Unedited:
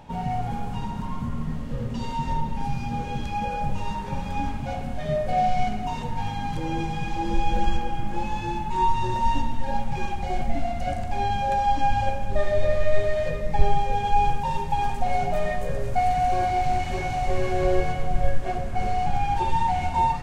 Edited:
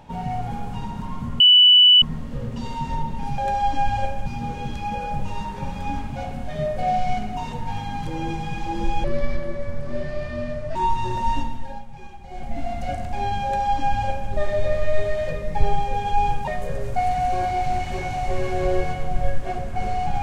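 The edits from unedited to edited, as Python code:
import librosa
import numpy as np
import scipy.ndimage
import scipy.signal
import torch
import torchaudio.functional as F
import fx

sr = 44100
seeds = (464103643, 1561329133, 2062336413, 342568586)

y = fx.edit(x, sr, fx.insert_tone(at_s=1.4, length_s=0.62, hz=2970.0, db=-8.5),
    fx.speed_span(start_s=7.54, length_s=1.2, speed=0.7),
    fx.fade_down_up(start_s=9.35, length_s=1.38, db=-12.5, fade_s=0.47),
    fx.duplicate(start_s=11.42, length_s=0.88, to_s=2.76),
    fx.cut(start_s=14.46, length_s=1.01), tone=tone)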